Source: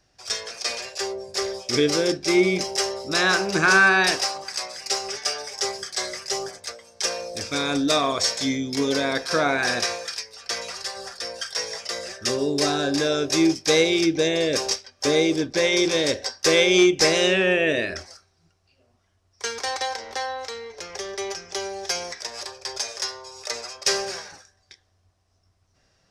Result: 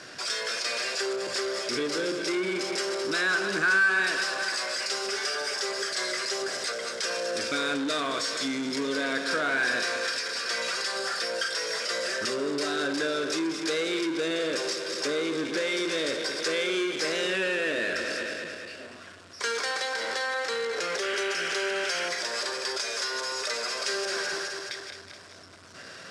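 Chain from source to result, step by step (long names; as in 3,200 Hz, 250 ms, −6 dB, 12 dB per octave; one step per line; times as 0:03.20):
feedback delay that plays each chunk backwards 106 ms, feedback 61%, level −12 dB
downward compressor 4 to 1, threshold −36 dBFS, peak gain reduction 20 dB
sound drawn into the spectrogram noise, 0:21.02–0:22.09, 1,300–3,300 Hz −45 dBFS
power curve on the samples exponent 0.5
loudspeaker in its box 240–9,100 Hz, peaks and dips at 800 Hz −8 dB, 1,500 Hz +7 dB, 6,000 Hz −6 dB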